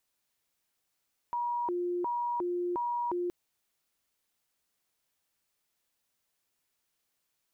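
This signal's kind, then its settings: siren hi-lo 353–958 Hz 1.4/s sine -29 dBFS 1.97 s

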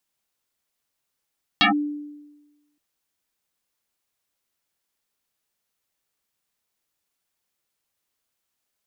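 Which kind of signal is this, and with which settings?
FM tone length 1.17 s, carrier 294 Hz, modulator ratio 1.72, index 8.3, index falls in 0.12 s linear, decay 1.17 s, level -12 dB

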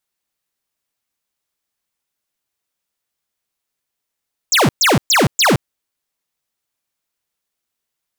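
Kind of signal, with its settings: burst of laser zaps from 7900 Hz, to 96 Hz, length 0.17 s square, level -12 dB, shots 4, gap 0.12 s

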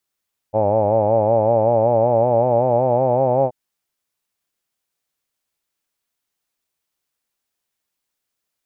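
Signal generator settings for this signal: formant-synthesis vowel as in hawed, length 2.98 s, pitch 104 Hz, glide +4 st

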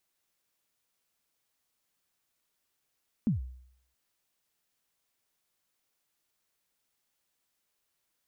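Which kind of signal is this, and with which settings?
kick drum length 0.67 s, from 250 Hz, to 63 Hz, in 0.133 s, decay 0.67 s, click off, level -21 dB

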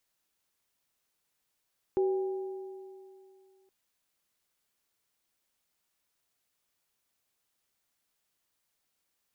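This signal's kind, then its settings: sine partials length 1.72 s, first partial 381 Hz, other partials 494/805 Hz, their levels -19.5/-14.5 dB, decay 2.49 s, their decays 1.50/2.58 s, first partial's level -23 dB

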